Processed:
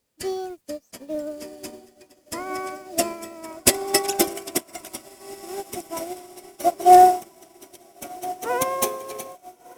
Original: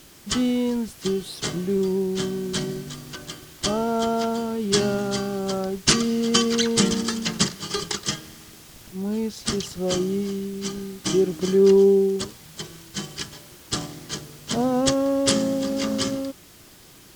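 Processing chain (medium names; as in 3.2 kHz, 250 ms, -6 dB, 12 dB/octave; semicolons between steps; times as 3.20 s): gliding tape speed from 151% -> 200%; echo that smears into a reverb 1436 ms, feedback 57%, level -7.5 dB; upward expansion 2.5:1, over -35 dBFS; trim +6 dB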